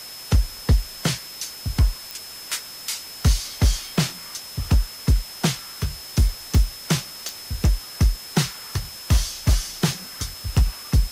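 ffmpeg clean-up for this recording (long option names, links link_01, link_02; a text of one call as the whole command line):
ffmpeg -i in.wav -af "adeclick=threshold=4,bandreject=frequency=5200:width=30,afftdn=noise_reduction=26:noise_floor=-38" out.wav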